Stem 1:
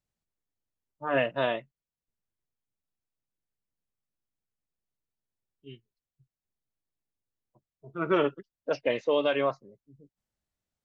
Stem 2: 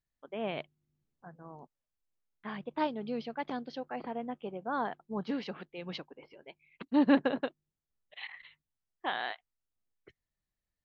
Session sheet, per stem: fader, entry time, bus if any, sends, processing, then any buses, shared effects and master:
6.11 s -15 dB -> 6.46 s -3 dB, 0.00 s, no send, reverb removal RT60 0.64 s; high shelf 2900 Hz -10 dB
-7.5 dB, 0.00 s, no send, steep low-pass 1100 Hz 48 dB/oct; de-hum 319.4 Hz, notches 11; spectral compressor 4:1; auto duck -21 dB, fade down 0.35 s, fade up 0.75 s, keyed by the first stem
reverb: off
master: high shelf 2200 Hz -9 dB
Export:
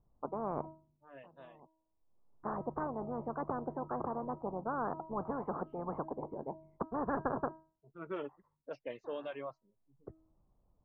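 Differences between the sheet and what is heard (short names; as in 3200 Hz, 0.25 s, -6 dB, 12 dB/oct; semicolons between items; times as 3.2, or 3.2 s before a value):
stem 1 -15.0 dB -> -26.5 dB; master: missing high shelf 2200 Hz -9 dB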